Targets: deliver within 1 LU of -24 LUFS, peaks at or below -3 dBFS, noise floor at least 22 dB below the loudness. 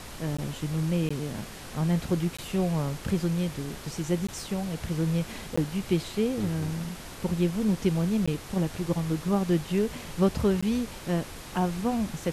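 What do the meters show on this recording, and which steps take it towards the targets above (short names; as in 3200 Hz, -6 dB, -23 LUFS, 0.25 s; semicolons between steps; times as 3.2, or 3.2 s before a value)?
dropouts 7; longest dropout 15 ms; noise floor -42 dBFS; noise floor target -51 dBFS; loudness -29.0 LUFS; peak -10.5 dBFS; loudness target -24.0 LUFS
-> interpolate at 0.37/1.09/2.37/4.27/5.56/8.26/10.61, 15 ms; noise print and reduce 9 dB; gain +5 dB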